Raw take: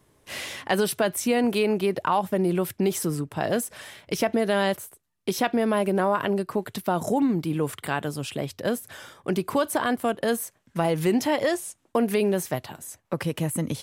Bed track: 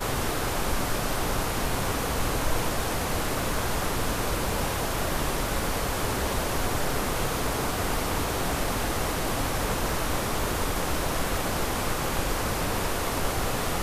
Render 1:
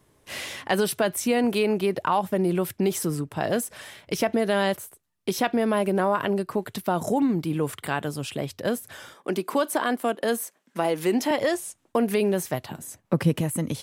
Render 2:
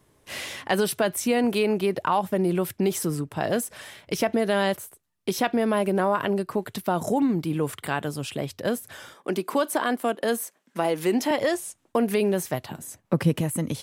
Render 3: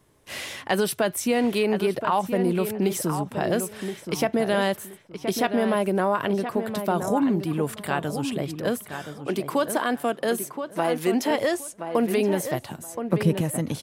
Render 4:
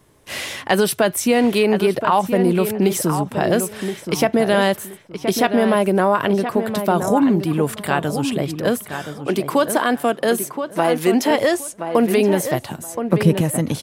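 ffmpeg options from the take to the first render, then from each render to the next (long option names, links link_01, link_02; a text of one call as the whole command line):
ffmpeg -i in.wav -filter_complex "[0:a]asettb=1/sr,asplit=3[link_01][link_02][link_03];[link_01]atrim=end=9.144[link_04];[link_02]atrim=start=9.14:end=11.31,asetpts=PTS-STARTPTS,afade=type=in:duration=0.004:curve=qsin,afade=type=out:start_time=2.166:duration=0.004:curve=qsin,highpass=frequency=210:width=0.5412,highpass=frequency=210:width=1.3066[link_05];[link_03]atrim=start=11.306[link_06];[link_04][link_05]acrossfade=duration=0.004:curve1=hsin:curve2=qsin[link_07];[link_07][link_06]acrossfade=duration=0.004:curve1=qsin:curve2=hsin,asettb=1/sr,asplit=3[link_08][link_09][link_10];[link_08]atrim=end=12.714[link_11];[link_09]atrim=start=12.71:end=13.41,asetpts=PTS-STARTPTS,afade=type=in:duration=0.004:curve=qsin,afade=type=out:start_time=0.696:duration=0.004:curve=qsin,equalizer=frequency=190:width_type=o:width=2:gain=8.5[link_12];[link_10]atrim=start=13.406[link_13];[link_11][link_12]acrossfade=duration=0.004:curve1=hsin:curve2=qsin[link_14];[link_14][link_13]acrossfade=duration=0.004:curve1=qsin:curve2=hsin" out.wav
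ffmpeg -i in.wav -af anull out.wav
ffmpeg -i in.wav -filter_complex "[0:a]asplit=2[link_01][link_02];[link_02]adelay=1023,lowpass=frequency=2300:poles=1,volume=-8dB,asplit=2[link_03][link_04];[link_04]adelay=1023,lowpass=frequency=2300:poles=1,volume=0.22,asplit=2[link_05][link_06];[link_06]adelay=1023,lowpass=frequency=2300:poles=1,volume=0.22[link_07];[link_01][link_03][link_05][link_07]amix=inputs=4:normalize=0" out.wav
ffmpeg -i in.wav -af "volume=6.5dB,alimiter=limit=-2dB:level=0:latency=1" out.wav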